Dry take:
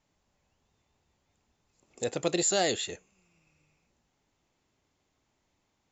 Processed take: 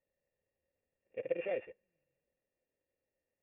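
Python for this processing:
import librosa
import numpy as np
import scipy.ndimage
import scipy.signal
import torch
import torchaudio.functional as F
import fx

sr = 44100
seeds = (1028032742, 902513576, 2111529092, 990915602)

y = np.r_[np.sort(x[:len(x) // 16 * 16].reshape(-1, 16), axis=1).ravel(), x[len(x) // 16 * 16:]]
y = fx.stretch_grains(y, sr, factor=0.58, grain_ms=49.0)
y = fx.formant_cascade(y, sr, vowel='e')
y = y * 10.0 ** (2.5 / 20.0)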